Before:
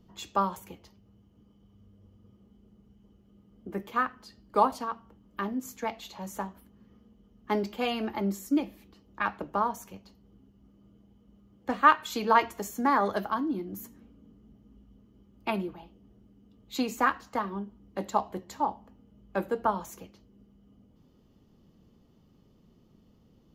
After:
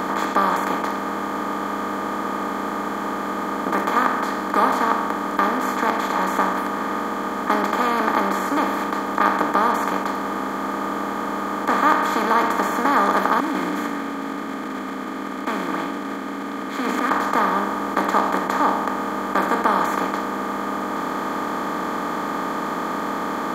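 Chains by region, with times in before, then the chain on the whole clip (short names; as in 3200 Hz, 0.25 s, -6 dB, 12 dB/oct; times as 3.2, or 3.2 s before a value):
13.4–17.11 block floating point 5-bit + vowel filter i + sustainer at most 58 dB/s
whole clip: per-bin compression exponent 0.2; notch 2800 Hz, Q 5.2; gain -2.5 dB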